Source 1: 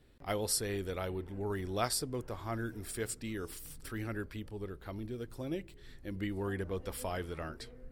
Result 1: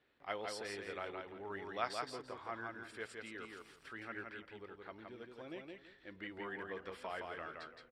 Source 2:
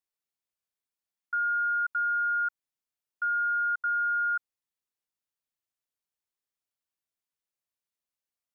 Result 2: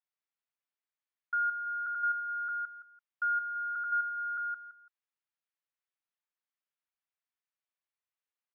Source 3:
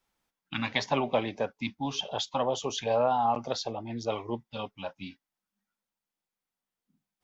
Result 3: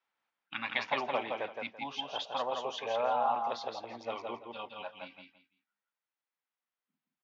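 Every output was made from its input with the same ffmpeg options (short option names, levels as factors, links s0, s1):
-filter_complex "[0:a]bandpass=f=2100:t=q:w=0.65:csg=0,aemphasis=mode=reproduction:type=75fm,asplit=2[s0][s1];[s1]aecho=0:1:168|336|504:0.631|0.145|0.0334[s2];[s0][s2]amix=inputs=2:normalize=0"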